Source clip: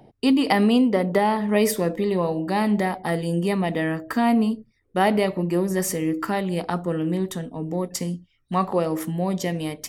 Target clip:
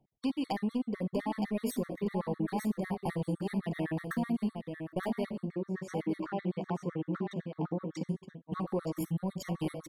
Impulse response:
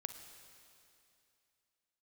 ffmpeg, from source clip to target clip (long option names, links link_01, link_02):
-filter_complex "[0:a]agate=range=-23dB:threshold=-30dB:ratio=16:detection=peak,lowshelf=frequency=230:gain=9.5,acompressor=threshold=-24dB:ratio=6,asoftclip=type=tanh:threshold=-20.5dB,asettb=1/sr,asplit=3[link_01][link_02][link_03];[link_01]atrim=end=5.344[link_04];[link_02]atrim=start=5.34:end=8.09,asetpts=PTS-STARTPTS,afade=type=in:duration=0.004:curve=qsin,afade=type=out:start_time=2.746:duration=0.004:curve=qsin,highpass=160,lowpass=3100[link_05];[link_03]atrim=start=8.086[link_06];[link_04][link_05]acrossfade=duration=0.004:curve1=hsin:curve2=qsin[link_07];[link_07][link_06]acrossfade=duration=0.004:curve1=qsin:curve2=hsin,aecho=1:1:919:0.473[link_08];[1:a]atrim=start_sample=2205,atrim=end_sample=3528[link_09];[link_08][link_09]afir=irnorm=-1:irlink=0,afftfilt=real='re*gt(sin(2*PI*7.9*pts/sr)*(1-2*mod(floor(b*sr/1024/1100),2)),0)':imag='im*gt(sin(2*PI*7.9*pts/sr)*(1-2*mod(floor(b*sr/1024/1100),2)),0)':win_size=1024:overlap=0.75"